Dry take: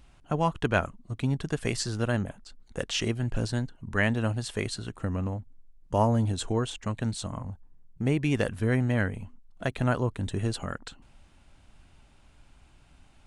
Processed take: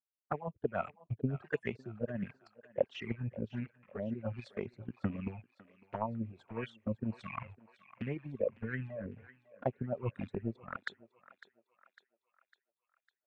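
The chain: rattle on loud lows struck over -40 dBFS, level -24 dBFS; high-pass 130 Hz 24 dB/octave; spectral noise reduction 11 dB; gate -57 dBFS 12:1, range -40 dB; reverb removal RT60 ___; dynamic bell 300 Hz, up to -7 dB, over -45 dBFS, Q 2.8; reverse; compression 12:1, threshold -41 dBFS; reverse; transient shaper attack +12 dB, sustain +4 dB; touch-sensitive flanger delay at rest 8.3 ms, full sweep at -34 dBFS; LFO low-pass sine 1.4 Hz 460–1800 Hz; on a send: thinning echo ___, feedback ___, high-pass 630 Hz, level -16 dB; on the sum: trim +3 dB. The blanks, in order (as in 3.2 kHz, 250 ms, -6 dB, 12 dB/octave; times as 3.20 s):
1.7 s, 553 ms, 53%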